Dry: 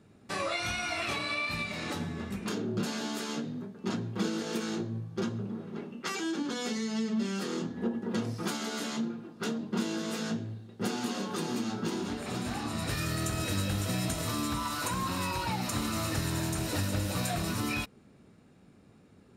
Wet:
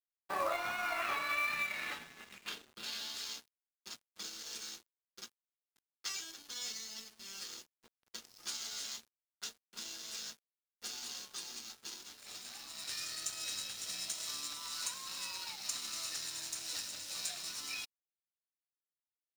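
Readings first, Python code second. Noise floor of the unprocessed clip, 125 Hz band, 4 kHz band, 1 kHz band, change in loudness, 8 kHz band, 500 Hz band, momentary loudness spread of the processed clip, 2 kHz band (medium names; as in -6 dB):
-58 dBFS, -32.5 dB, -2.5 dB, -7.0 dB, -6.5 dB, -1.5 dB, -13.0 dB, 13 LU, -4.5 dB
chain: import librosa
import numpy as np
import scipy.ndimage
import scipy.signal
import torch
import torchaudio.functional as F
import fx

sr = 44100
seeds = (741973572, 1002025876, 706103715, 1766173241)

y = fx.filter_sweep_bandpass(x, sr, from_hz=900.0, to_hz=5600.0, start_s=0.46, end_s=3.56, q=1.5)
y = fx.quant_float(y, sr, bits=2)
y = np.sign(y) * np.maximum(np.abs(y) - 10.0 ** (-53.5 / 20.0), 0.0)
y = y * 10.0 ** (4.0 / 20.0)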